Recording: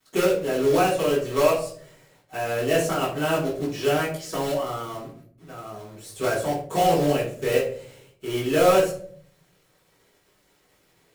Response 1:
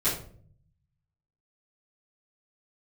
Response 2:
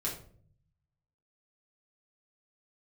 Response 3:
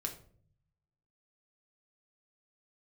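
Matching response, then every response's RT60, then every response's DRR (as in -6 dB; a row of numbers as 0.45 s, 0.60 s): 1; 0.55 s, 0.55 s, 0.55 s; -13.5 dB, -4.5 dB, 3.0 dB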